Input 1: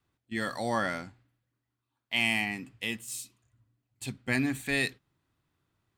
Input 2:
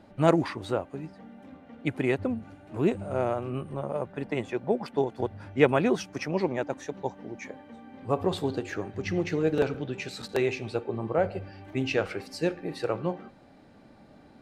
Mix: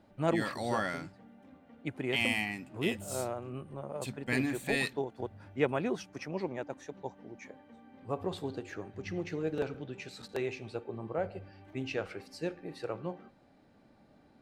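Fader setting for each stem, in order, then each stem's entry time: -3.5 dB, -8.5 dB; 0.00 s, 0.00 s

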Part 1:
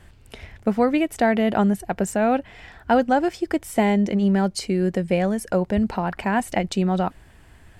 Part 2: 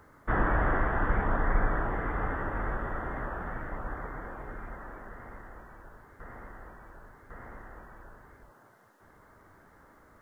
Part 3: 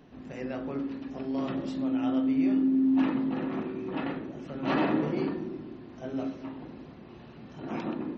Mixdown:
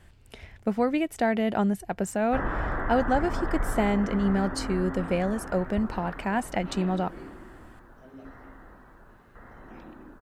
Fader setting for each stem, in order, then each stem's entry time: -5.5 dB, -3.0 dB, -14.0 dB; 0.00 s, 2.05 s, 2.00 s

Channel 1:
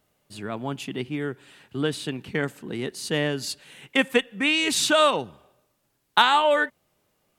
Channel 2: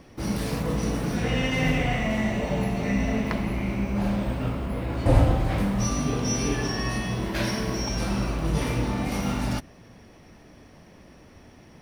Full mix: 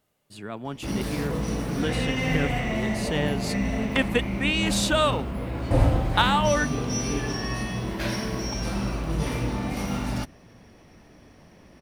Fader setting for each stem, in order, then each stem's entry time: -3.5 dB, -1.5 dB; 0.00 s, 0.65 s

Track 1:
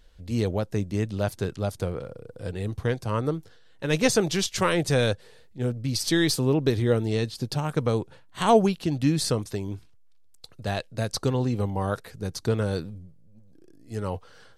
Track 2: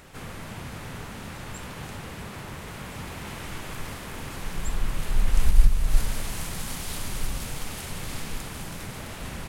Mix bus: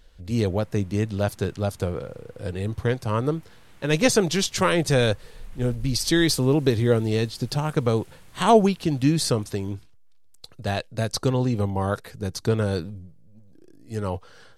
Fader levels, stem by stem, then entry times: +2.5 dB, -19.0 dB; 0.00 s, 0.25 s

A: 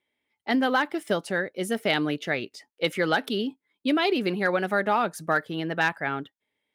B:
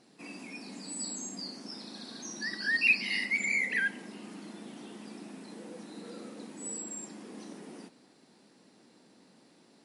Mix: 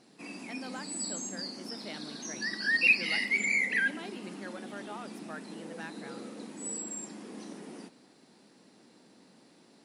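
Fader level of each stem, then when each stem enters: -20.0 dB, +1.5 dB; 0.00 s, 0.00 s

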